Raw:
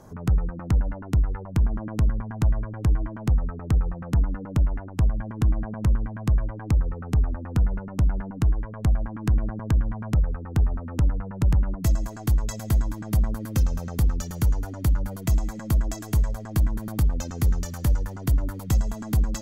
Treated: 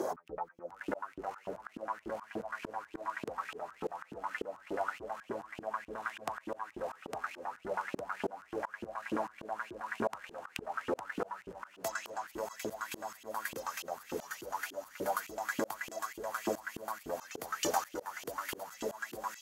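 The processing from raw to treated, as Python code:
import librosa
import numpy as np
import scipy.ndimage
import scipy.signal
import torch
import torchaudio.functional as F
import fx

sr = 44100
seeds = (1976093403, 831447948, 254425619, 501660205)

p1 = fx.echo_diffused(x, sr, ms=637, feedback_pct=70, wet_db=-13)
p2 = fx.filter_lfo_highpass(p1, sr, shape='saw_up', hz=3.4, low_hz=320.0, high_hz=3100.0, q=6.2)
p3 = fx.auto_swell(p2, sr, attack_ms=639.0)
p4 = fx.rider(p3, sr, range_db=4, speed_s=0.5)
p5 = p3 + (p4 * librosa.db_to_amplitude(-2.0))
y = p5 * librosa.db_to_amplitude(5.0)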